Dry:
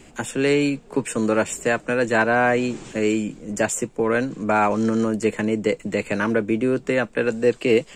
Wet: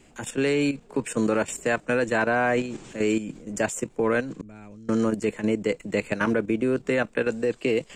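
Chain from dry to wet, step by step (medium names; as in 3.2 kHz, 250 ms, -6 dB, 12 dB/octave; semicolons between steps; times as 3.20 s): 4.41–4.89 s: amplifier tone stack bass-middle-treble 10-0-1; level held to a coarse grid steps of 11 dB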